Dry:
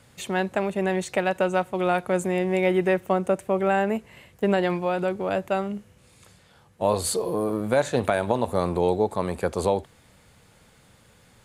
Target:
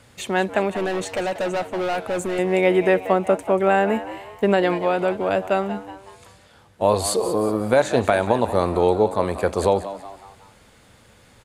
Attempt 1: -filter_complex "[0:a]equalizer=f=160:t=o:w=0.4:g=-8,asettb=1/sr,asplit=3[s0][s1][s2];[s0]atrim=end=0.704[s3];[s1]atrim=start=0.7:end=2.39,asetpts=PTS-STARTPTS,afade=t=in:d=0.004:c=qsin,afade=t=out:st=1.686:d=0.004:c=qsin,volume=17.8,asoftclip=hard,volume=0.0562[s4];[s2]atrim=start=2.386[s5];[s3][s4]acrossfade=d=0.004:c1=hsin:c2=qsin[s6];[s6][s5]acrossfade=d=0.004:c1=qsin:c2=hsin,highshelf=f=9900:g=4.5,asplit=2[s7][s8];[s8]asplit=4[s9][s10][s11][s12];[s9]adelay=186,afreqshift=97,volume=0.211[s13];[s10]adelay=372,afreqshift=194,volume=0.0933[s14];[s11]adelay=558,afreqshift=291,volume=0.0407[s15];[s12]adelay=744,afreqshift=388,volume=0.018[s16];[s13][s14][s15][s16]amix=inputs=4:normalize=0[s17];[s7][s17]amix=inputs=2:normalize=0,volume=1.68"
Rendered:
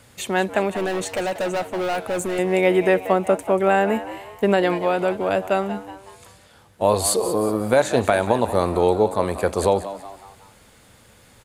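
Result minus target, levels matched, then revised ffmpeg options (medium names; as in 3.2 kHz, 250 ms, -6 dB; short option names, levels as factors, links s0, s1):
8 kHz band +4.0 dB
-filter_complex "[0:a]equalizer=f=160:t=o:w=0.4:g=-8,asettb=1/sr,asplit=3[s0][s1][s2];[s0]atrim=end=0.704[s3];[s1]atrim=start=0.7:end=2.39,asetpts=PTS-STARTPTS,afade=t=in:d=0.004:c=qsin,afade=t=out:st=1.686:d=0.004:c=qsin,volume=17.8,asoftclip=hard,volume=0.0562[s4];[s2]atrim=start=2.386[s5];[s3][s4]acrossfade=d=0.004:c1=hsin:c2=qsin[s6];[s6][s5]acrossfade=d=0.004:c1=qsin:c2=hsin,highshelf=f=9900:g=-5.5,asplit=2[s7][s8];[s8]asplit=4[s9][s10][s11][s12];[s9]adelay=186,afreqshift=97,volume=0.211[s13];[s10]adelay=372,afreqshift=194,volume=0.0933[s14];[s11]adelay=558,afreqshift=291,volume=0.0407[s15];[s12]adelay=744,afreqshift=388,volume=0.018[s16];[s13][s14][s15][s16]amix=inputs=4:normalize=0[s17];[s7][s17]amix=inputs=2:normalize=0,volume=1.68"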